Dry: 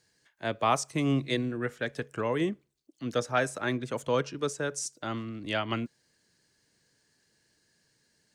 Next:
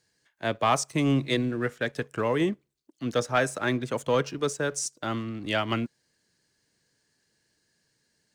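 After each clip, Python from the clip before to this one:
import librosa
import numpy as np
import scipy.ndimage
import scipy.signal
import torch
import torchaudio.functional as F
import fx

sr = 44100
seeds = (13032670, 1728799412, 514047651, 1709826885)

y = fx.leveller(x, sr, passes=1)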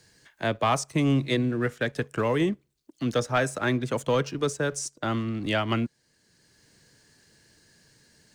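y = fx.low_shelf(x, sr, hz=150.0, db=6.0)
y = fx.band_squash(y, sr, depth_pct=40)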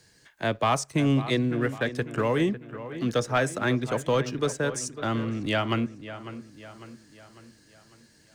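y = fx.echo_wet_lowpass(x, sr, ms=550, feedback_pct=49, hz=2900.0, wet_db=-13)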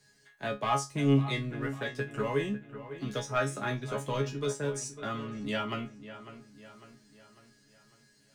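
y = fx.resonator_bank(x, sr, root=49, chord='fifth', decay_s=0.21)
y = y * librosa.db_to_amplitude(5.5)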